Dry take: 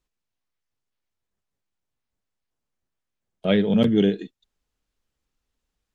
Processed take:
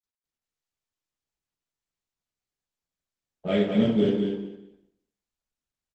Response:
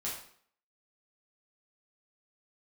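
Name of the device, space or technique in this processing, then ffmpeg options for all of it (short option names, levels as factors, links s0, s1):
speakerphone in a meeting room: -filter_complex "[0:a]asplit=3[s0][s1][s2];[s0]afade=t=out:st=3.52:d=0.02[s3];[s1]agate=range=0.0224:threshold=0.178:ratio=3:detection=peak,afade=t=in:st=3.52:d=0.02,afade=t=out:st=4.13:d=0.02[s4];[s2]afade=t=in:st=4.13:d=0.02[s5];[s3][s4][s5]amix=inputs=3:normalize=0,afwtdn=0.0126,aecho=1:1:200|400|600:0.501|0.0902|0.0162[s6];[1:a]atrim=start_sample=2205[s7];[s6][s7]afir=irnorm=-1:irlink=0,asplit=2[s8][s9];[s9]adelay=350,highpass=300,lowpass=3400,asoftclip=type=hard:threshold=0.15,volume=0.0398[s10];[s8][s10]amix=inputs=2:normalize=0,dynaudnorm=f=130:g=3:m=1.5,volume=0.447" -ar 48000 -c:a libopus -b:a 16k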